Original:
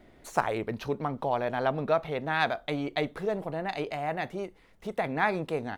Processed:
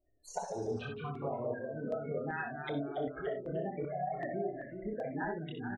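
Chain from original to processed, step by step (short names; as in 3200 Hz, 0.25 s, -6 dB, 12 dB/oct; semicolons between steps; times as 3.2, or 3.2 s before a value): spectral gate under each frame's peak -10 dB strong; chorus voices 6, 0.49 Hz, delay 27 ms, depth 2.3 ms; compressor 10:1, threshold -40 dBFS, peak gain reduction 15 dB; spectral noise reduction 23 dB; echoes that change speed 0.123 s, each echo -1 st, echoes 3, each echo -6 dB; on a send: early reflections 62 ms -6 dB, 74 ms -14.5 dB; on the sum: stepped notch 2.6 Hz 210–4900 Hz; gain +6.5 dB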